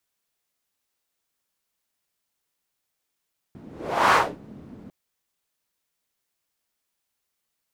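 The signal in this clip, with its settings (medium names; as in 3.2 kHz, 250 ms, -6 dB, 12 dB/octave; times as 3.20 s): whoosh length 1.35 s, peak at 0.59 s, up 0.51 s, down 0.27 s, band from 230 Hz, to 1.2 kHz, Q 2, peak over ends 27 dB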